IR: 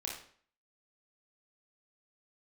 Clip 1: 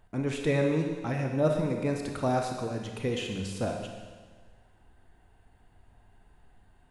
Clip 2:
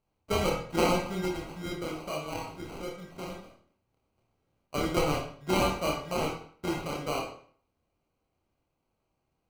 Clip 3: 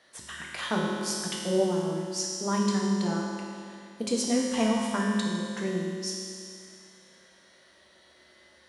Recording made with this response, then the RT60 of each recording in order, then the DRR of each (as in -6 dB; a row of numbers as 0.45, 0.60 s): 2; 1.5, 0.50, 2.4 s; 2.5, -2.0, -3.0 dB